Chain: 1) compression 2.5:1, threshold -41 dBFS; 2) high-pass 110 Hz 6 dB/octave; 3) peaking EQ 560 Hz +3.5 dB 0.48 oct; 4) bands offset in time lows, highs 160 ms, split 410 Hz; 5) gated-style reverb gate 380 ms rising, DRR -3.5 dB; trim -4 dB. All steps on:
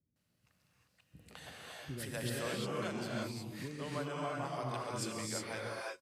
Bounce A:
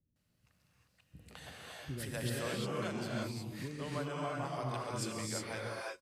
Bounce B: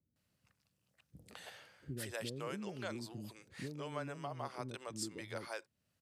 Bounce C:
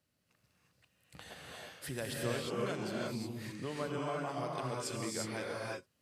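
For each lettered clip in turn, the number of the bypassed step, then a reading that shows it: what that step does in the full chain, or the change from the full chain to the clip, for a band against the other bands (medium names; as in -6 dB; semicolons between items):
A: 2, 125 Hz band +2.5 dB; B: 5, echo-to-direct 22.0 dB to 17.0 dB; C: 4, echo-to-direct 22.0 dB to 3.5 dB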